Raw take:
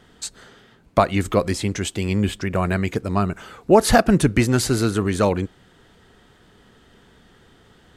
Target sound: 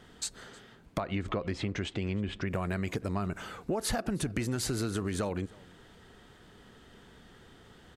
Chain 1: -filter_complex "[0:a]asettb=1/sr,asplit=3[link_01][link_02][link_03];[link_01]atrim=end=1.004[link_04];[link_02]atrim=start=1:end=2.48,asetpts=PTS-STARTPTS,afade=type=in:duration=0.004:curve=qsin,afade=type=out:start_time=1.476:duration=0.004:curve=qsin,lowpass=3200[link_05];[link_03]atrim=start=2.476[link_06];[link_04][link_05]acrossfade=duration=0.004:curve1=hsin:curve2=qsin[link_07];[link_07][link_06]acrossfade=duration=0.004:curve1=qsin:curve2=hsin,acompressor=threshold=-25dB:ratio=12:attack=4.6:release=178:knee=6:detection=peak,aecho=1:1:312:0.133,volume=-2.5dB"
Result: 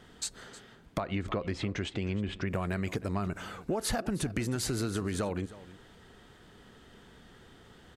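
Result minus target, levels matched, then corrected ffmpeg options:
echo-to-direct +6.5 dB
-filter_complex "[0:a]asettb=1/sr,asplit=3[link_01][link_02][link_03];[link_01]atrim=end=1.004[link_04];[link_02]atrim=start=1:end=2.48,asetpts=PTS-STARTPTS,afade=type=in:duration=0.004:curve=qsin,afade=type=out:start_time=1.476:duration=0.004:curve=qsin,lowpass=3200[link_05];[link_03]atrim=start=2.476[link_06];[link_04][link_05]acrossfade=duration=0.004:curve1=hsin:curve2=qsin[link_07];[link_07][link_06]acrossfade=duration=0.004:curve1=qsin:curve2=hsin,acompressor=threshold=-25dB:ratio=12:attack=4.6:release=178:knee=6:detection=peak,aecho=1:1:312:0.0631,volume=-2.5dB"

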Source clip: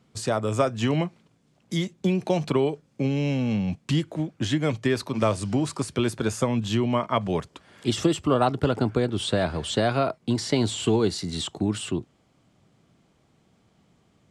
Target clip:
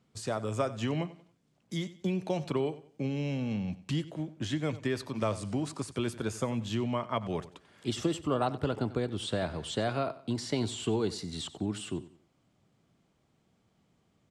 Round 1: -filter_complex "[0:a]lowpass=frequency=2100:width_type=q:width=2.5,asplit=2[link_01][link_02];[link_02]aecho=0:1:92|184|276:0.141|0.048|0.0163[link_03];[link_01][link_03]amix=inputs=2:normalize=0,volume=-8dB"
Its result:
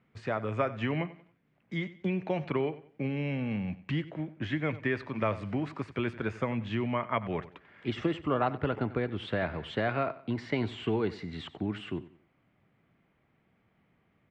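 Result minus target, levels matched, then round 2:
2,000 Hz band +5.5 dB
-filter_complex "[0:a]asplit=2[link_01][link_02];[link_02]aecho=0:1:92|184|276:0.141|0.048|0.0163[link_03];[link_01][link_03]amix=inputs=2:normalize=0,volume=-8dB"

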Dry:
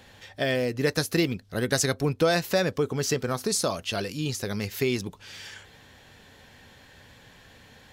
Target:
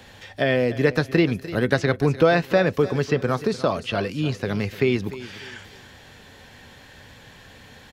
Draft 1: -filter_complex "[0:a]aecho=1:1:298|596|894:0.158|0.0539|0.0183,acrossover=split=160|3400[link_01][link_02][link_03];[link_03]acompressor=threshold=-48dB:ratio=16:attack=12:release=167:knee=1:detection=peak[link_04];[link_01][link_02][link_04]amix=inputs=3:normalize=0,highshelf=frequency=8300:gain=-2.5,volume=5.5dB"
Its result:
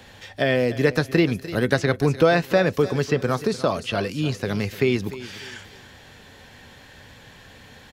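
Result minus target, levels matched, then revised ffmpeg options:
downward compressor: peak gain reduction −6 dB
-filter_complex "[0:a]aecho=1:1:298|596|894:0.158|0.0539|0.0183,acrossover=split=160|3400[link_01][link_02][link_03];[link_03]acompressor=threshold=-54.5dB:ratio=16:attack=12:release=167:knee=1:detection=peak[link_04];[link_01][link_02][link_04]amix=inputs=3:normalize=0,highshelf=frequency=8300:gain=-2.5,volume=5.5dB"

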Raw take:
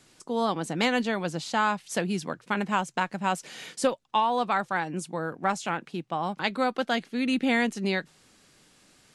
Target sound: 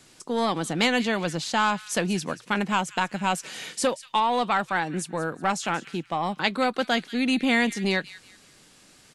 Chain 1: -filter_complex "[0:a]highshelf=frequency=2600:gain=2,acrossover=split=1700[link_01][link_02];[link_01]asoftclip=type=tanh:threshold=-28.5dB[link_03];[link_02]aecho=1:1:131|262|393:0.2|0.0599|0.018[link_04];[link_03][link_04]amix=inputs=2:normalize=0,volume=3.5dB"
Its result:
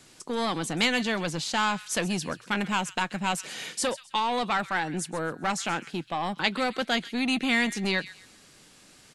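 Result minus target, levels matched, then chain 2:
echo 52 ms early; soft clipping: distortion +7 dB
-filter_complex "[0:a]highshelf=frequency=2600:gain=2,acrossover=split=1700[link_01][link_02];[link_01]asoftclip=type=tanh:threshold=-20.5dB[link_03];[link_02]aecho=1:1:183|366|549:0.2|0.0599|0.018[link_04];[link_03][link_04]amix=inputs=2:normalize=0,volume=3.5dB"

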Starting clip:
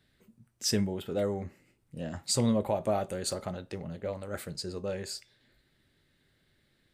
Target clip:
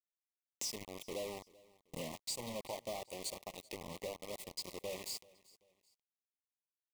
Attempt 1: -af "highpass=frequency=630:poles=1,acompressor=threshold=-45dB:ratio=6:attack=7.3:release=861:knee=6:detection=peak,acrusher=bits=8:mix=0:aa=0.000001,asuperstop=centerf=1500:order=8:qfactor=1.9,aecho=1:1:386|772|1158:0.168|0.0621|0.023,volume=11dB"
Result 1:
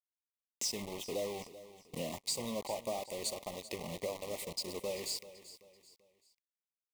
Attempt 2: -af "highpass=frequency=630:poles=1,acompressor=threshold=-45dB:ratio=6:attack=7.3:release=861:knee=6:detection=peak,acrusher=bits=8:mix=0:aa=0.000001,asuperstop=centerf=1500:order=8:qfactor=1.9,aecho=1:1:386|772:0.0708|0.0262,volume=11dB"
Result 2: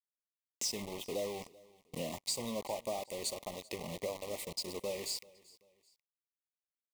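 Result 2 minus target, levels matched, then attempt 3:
downward compressor: peak gain reduction −5 dB
-af "highpass=frequency=630:poles=1,acompressor=threshold=-51dB:ratio=6:attack=7.3:release=861:knee=6:detection=peak,acrusher=bits=8:mix=0:aa=0.000001,asuperstop=centerf=1500:order=8:qfactor=1.9,aecho=1:1:386|772:0.0708|0.0262,volume=11dB"

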